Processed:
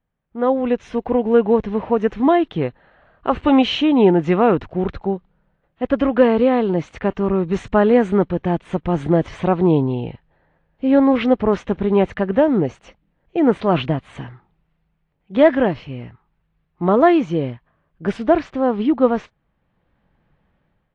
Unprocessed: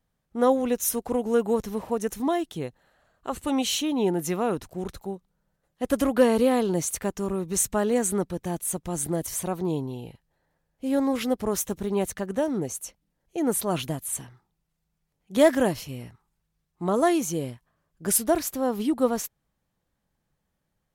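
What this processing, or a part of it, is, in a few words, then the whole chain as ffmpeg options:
action camera in a waterproof case: -filter_complex "[0:a]asettb=1/sr,asplit=3[link_01][link_02][link_03];[link_01]atrim=end=0.844[link_04];[link_02]atrim=start=0.84:end=1.73,asetpts=PTS-STARTPTS,afade=type=in:duration=0.004:curve=qsin,afade=type=out:start_time=0.886:duration=0.004:curve=qsin,bandreject=frequency=1300:width=7[link_05];[link_03]atrim=start=1.726[link_06];[link_04][link_05]acrossfade=duration=0.004:curve1=hsin:curve2=qsin[link_07];[link_07][link_06]acrossfade=duration=0.004:curve1=qsin:curve2=hsin,lowpass=frequency=2900:width=0.5412,lowpass=frequency=2900:width=1.3066,dynaudnorm=framelen=230:gausssize=5:maxgain=15.5dB,volume=-1dB" -ar 22050 -c:a aac -b:a 48k

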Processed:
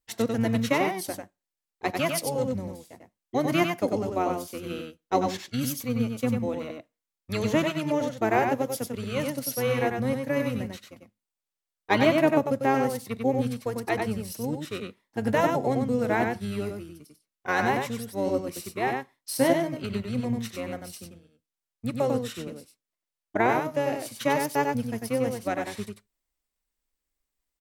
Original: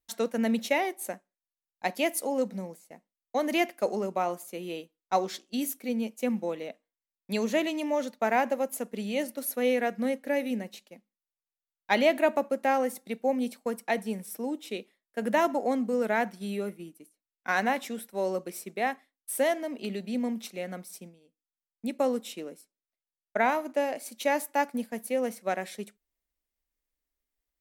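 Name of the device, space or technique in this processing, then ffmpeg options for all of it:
octave pedal: -filter_complex "[0:a]asettb=1/sr,asplit=3[link_01][link_02][link_03];[link_01]atrim=end=19.404[link_04];[link_02]atrim=start=19.4:end=19.82,asetpts=PTS-STARTPTS,afade=type=in:duration=0.004:curve=qsin,afade=type=out:start_time=0.416:duration=0.004:curve=qsin,asplit=2[link_05][link_06];[link_06]adelay=15,volume=-7dB[link_07];[link_05][link_07]amix=inputs=2:normalize=0,atrim=end_sample=18522[link_08];[link_03]atrim=start=19.816[link_09];[link_04][link_08]acrossfade=duration=0.004:curve1=hsin:curve2=qsin[link_10];[link_10][link_09]acrossfade=duration=0.004:curve1=qsin:curve2=hsin,aecho=1:1:96:0.596,asplit=2[link_11][link_12];[link_12]asetrate=22050,aresample=44100,atempo=2,volume=-4dB[link_13];[link_11][link_13]amix=inputs=2:normalize=0"

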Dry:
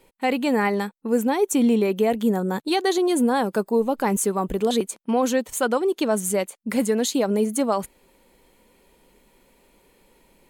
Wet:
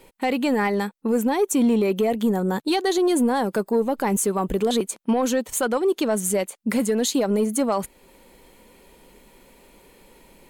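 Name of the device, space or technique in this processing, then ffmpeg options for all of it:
soft clipper into limiter: -af "asoftclip=type=tanh:threshold=-11.5dB,alimiter=limit=-20dB:level=0:latency=1:release=442,volume=6.5dB"

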